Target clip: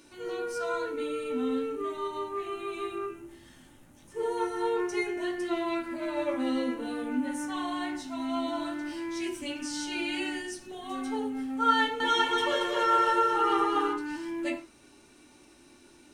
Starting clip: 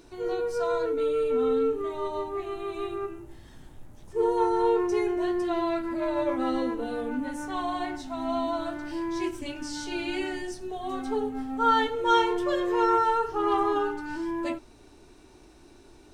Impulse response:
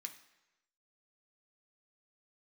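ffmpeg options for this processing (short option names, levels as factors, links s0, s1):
-filter_complex "[0:a]asettb=1/sr,asplit=3[s0][s1][s2];[s0]atrim=end=11.774[s3];[s1]atrim=start=11.77:end=13.93,asetpts=PTS-STARTPTS,afade=t=in:d=0.004:c=qsin,afade=t=out:st=2.156:d=0.004:c=qsin,aecho=1:1:230|414|561.2|679|773.2:0.631|0.398|0.251|0.158|0.1,atrim=end_sample=95256[s4];[s2]atrim=start=13.926[s5];[s3][s4]acrossfade=d=0.004:c1=hsin:c2=qsin[s6];[s6][s5]acrossfade=d=0.004:c1=qsin:c2=hsin[s7];[1:a]atrim=start_sample=2205,afade=t=out:st=0.21:d=0.01,atrim=end_sample=9702,asetrate=52920,aresample=44100[s8];[s7][s8]afir=irnorm=-1:irlink=0,volume=2.24"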